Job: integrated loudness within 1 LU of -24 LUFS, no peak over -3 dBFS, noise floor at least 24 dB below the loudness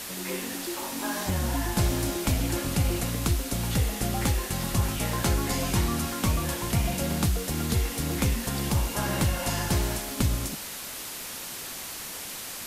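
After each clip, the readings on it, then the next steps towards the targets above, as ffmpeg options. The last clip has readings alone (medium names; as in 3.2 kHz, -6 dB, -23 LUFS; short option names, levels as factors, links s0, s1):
noise floor -38 dBFS; noise floor target -52 dBFS; loudness -28.0 LUFS; peak level -12.5 dBFS; loudness target -24.0 LUFS
-> -af "afftdn=nr=14:nf=-38"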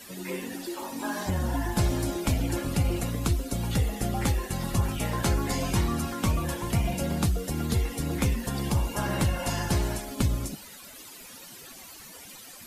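noise floor -46 dBFS; noise floor target -53 dBFS
-> -af "afftdn=nr=7:nf=-46"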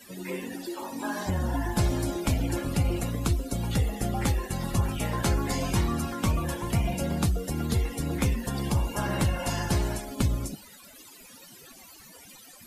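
noise floor -50 dBFS; noise floor target -53 dBFS
-> -af "afftdn=nr=6:nf=-50"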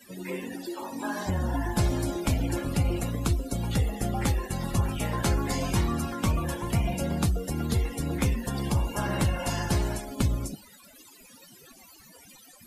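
noise floor -53 dBFS; loudness -29.0 LUFS; peak level -13.5 dBFS; loudness target -24.0 LUFS
-> -af "volume=1.78"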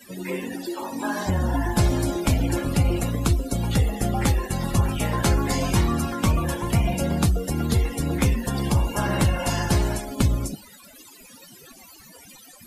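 loudness -24.0 LUFS; peak level -8.5 dBFS; noise floor -48 dBFS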